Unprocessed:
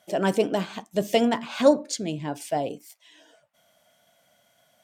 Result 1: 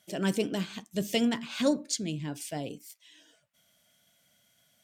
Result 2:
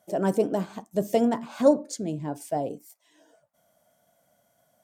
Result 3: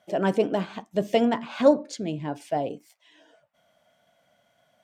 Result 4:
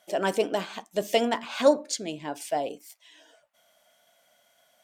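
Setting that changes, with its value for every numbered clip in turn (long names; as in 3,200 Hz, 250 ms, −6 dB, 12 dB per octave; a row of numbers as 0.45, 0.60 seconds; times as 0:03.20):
parametric band, centre frequency: 750, 2,900, 15,000, 120 Hertz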